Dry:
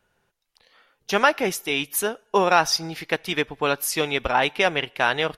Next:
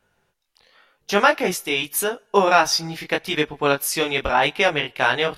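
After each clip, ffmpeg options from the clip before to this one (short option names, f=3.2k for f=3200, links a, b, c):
-af "flanger=delay=19.5:depth=4.1:speed=0.87,volume=5dB"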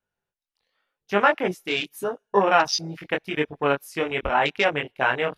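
-af "afwtdn=0.0501,volume=-2.5dB"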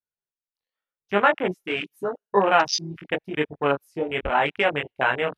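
-af "afwtdn=0.0447"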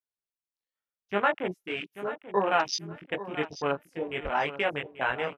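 -af "aecho=1:1:836|1672|2508:0.2|0.0459|0.0106,volume=-6.5dB"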